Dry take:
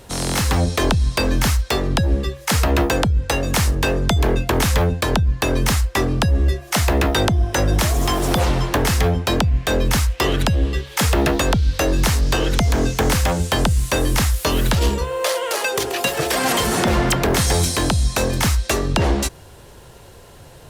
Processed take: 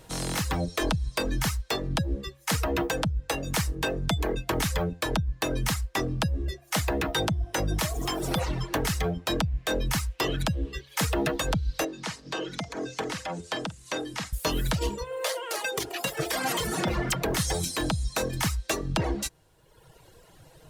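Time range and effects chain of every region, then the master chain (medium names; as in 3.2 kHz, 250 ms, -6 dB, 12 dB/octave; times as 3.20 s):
11.84–14.33 s: doubling 49 ms -11.5 dB + compression 2:1, threshold -19 dBFS + band-pass 180–6600 Hz
whole clip: reverb removal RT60 1.2 s; comb 6.3 ms, depth 39%; trim -8 dB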